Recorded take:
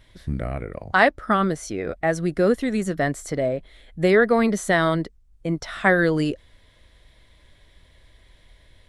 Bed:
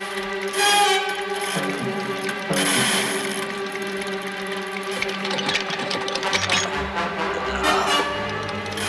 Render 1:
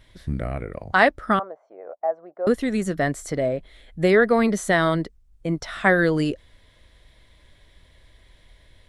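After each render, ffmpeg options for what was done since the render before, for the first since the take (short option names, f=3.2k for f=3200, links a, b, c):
-filter_complex "[0:a]asettb=1/sr,asplit=3[a][b][c];[a]atrim=end=1.394[d];[b]atrim=start=1.39:end=2.47,asetpts=PTS-STARTPTS,afade=t=in:d=0.004:c=qsin,afade=t=out:st=1.076:d=0.004:c=qsin,asuperpass=centerf=750:order=4:qfactor=1.8[e];[c]atrim=start=2.466[f];[d][e]acrossfade=d=0.004:c1=hsin:c2=qsin[g];[g][f]acrossfade=d=0.004:c1=qsin:c2=hsin"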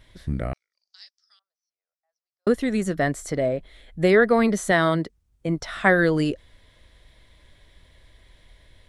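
-filter_complex "[0:a]asettb=1/sr,asplit=3[a][b][c];[a]atrim=end=0.534[d];[b]atrim=start=0.53:end=2.47,asetpts=PTS-STARTPTS,afade=t=in:d=0.004:c=qsin,afade=t=out:st=1.936:d=0.004:c=qsin,asuperpass=centerf=5300:order=4:qfactor=4[e];[c]atrim=start=2.466[f];[d][e]acrossfade=d=0.004:c1=hsin:c2=qsin[g];[g][f]acrossfade=d=0.004:c1=qsin:c2=hsin,asettb=1/sr,asplit=3[h][i][j];[h]atrim=end=4.714[k];[i]atrim=start=4.71:end=5.48,asetpts=PTS-STARTPTS,afade=t=in:d=0.004:c=qsin,afade=t=out:st=0.766:d=0.004:c=qsin,highpass=69[l];[j]atrim=start=5.476[m];[k][l]acrossfade=d=0.004:c1=hsin:c2=qsin[n];[n][m]acrossfade=d=0.004:c1=qsin:c2=hsin"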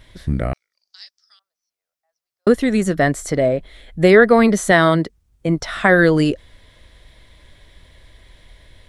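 -af "alimiter=level_in=6.5dB:limit=-1dB:release=50:level=0:latency=1"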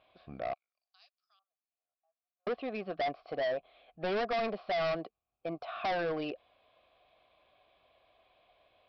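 -filter_complex "[0:a]asplit=3[a][b][c];[a]bandpass=f=730:t=q:w=8,volume=0dB[d];[b]bandpass=f=1.09k:t=q:w=8,volume=-6dB[e];[c]bandpass=f=2.44k:t=q:w=8,volume=-9dB[f];[d][e][f]amix=inputs=3:normalize=0,aresample=11025,volume=29.5dB,asoftclip=hard,volume=-29.5dB,aresample=44100"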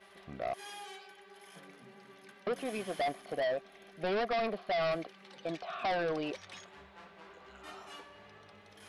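-filter_complex "[1:a]volume=-29.5dB[a];[0:a][a]amix=inputs=2:normalize=0"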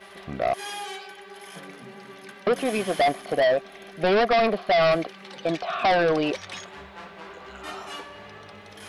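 -af "volume=12dB"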